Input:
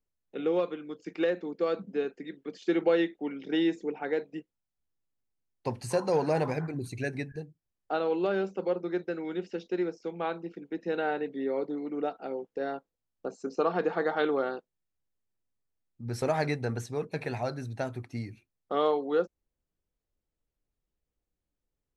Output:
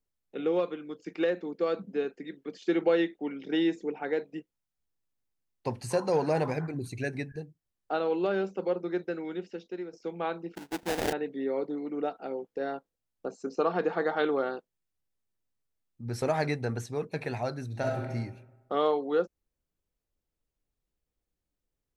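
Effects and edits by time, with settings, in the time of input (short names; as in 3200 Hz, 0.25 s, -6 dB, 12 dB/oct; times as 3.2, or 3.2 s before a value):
9.13–9.93 fade out, to -10.5 dB
10.55–11.13 sample-rate reducer 1200 Hz, jitter 20%
17.67–18.13 reverb throw, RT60 1.1 s, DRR -0.5 dB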